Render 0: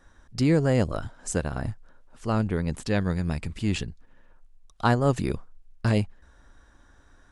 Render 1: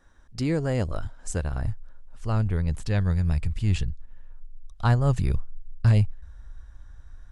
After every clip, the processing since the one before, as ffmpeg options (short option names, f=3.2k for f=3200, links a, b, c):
-af "asubboost=boost=8.5:cutoff=100,volume=-3.5dB"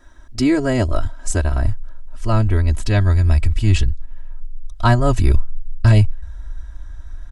-af "aecho=1:1:3.1:0.95,volume=7.5dB"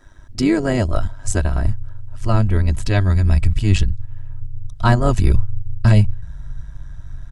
-af "tremolo=f=100:d=0.571,volume=2dB"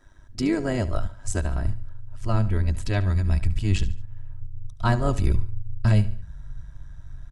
-af "aecho=1:1:72|144|216:0.158|0.0602|0.0229,volume=-7dB"